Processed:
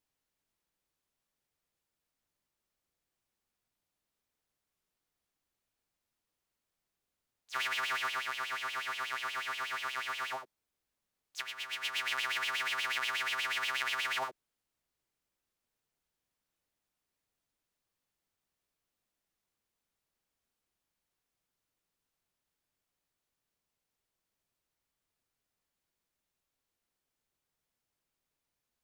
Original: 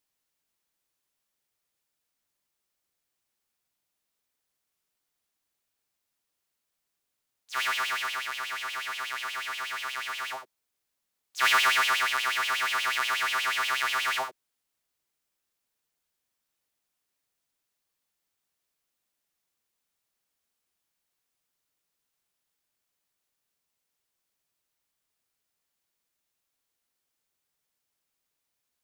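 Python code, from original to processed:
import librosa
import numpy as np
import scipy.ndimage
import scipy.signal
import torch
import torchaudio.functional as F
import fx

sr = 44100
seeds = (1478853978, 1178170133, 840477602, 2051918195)

y = fx.tilt_eq(x, sr, slope=-1.5)
y = fx.over_compress(y, sr, threshold_db=-30.0, ratio=-0.5)
y = y * 10.0 ** (-4.0 / 20.0)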